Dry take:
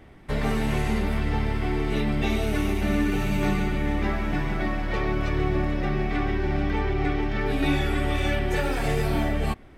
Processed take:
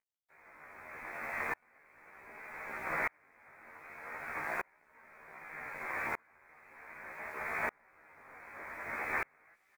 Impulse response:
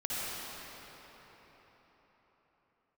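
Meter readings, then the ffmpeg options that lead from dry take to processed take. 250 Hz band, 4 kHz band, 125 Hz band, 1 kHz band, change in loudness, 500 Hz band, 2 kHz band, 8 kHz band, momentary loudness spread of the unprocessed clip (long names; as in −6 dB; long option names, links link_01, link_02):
−30.0 dB, −28.5 dB, −34.5 dB, −10.5 dB, −13.5 dB, −19.5 dB, −7.0 dB, −16.5 dB, 3 LU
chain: -filter_complex "[0:a]aeval=exprs='val(0)+0.0224*(sin(2*PI*50*n/s)+sin(2*PI*2*50*n/s)/2+sin(2*PI*3*50*n/s)/3+sin(2*PI*4*50*n/s)/4+sin(2*PI*5*50*n/s)/5)':channel_layout=same,aeval=exprs='(mod(9.44*val(0)+1,2)-1)/9.44':channel_layout=same,acompressor=mode=upward:threshold=-36dB:ratio=2.5,highpass=700,asplit=2[link_01][link_02];[link_02]adelay=590,lowpass=frequency=1300:poles=1,volume=-10dB,asplit=2[link_03][link_04];[link_04]adelay=590,lowpass=frequency=1300:poles=1,volume=0.27,asplit=2[link_05][link_06];[link_06]adelay=590,lowpass=frequency=1300:poles=1,volume=0.27[link_07];[link_01][link_03][link_05][link_07]amix=inputs=4:normalize=0,lowpass=frequency=2400:width_type=q:width=0.5098,lowpass=frequency=2400:width_type=q:width=0.6013,lowpass=frequency=2400:width_type=q:width=0.9,lowpass=frequency=2400:width_type=q:width=2.563,afreqshift=-2800,acrusher=bits=7:mix=0:aa=0.000001,flanger=delay=17.5:depth=4.4:speed=0.4,asplit=2[link_08][link_09];[link_09]adelay=13,volume=-3dB[link_10];[link_08][link_10]amix=inputs=2:normalize=0,aeval=exprs='val(0)*pow(10,-36*if(lt(mod(-0.65*n/s,1),2*abs(-0.65)/1000),1-mod(-0.65*n/s,1)/(2*abs(-0.65)/1000),(mod(-0.65*n/s,1)-2*abs(-0.65)/1000)/(1-2*abs(-0.65)/1000))/20)':channel_layout=same,volume=-1.5dB"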